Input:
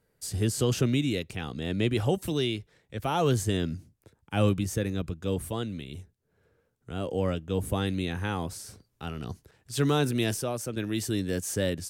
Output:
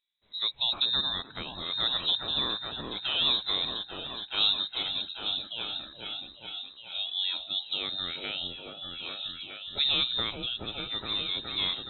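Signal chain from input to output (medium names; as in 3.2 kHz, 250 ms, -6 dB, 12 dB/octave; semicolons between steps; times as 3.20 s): frequency inversion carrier 3.9 kHz; delay with an opening low-pass 420 ms, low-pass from 750 Hz, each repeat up 1 oct, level 0 dB; spectral noise reduction 12 dB; trim -2.5 dB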